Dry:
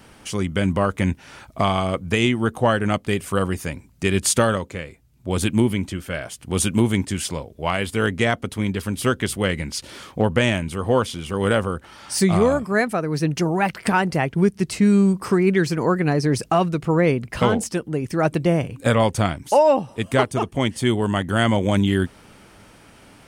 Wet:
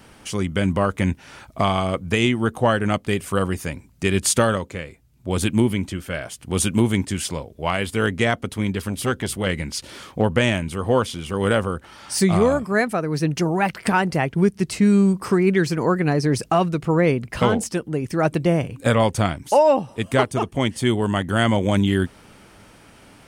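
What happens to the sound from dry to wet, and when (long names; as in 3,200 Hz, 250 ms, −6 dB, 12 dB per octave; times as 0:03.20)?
0:08.88–0:09.47: saturating transformer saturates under 470 Hz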